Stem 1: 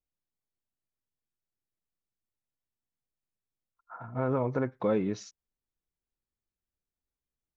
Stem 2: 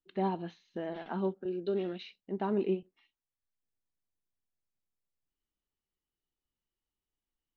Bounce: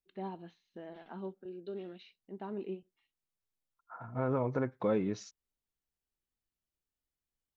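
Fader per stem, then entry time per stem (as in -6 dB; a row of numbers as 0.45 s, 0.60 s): -3.0 dB, -9.5 dB; 0.00 s, 0.00 s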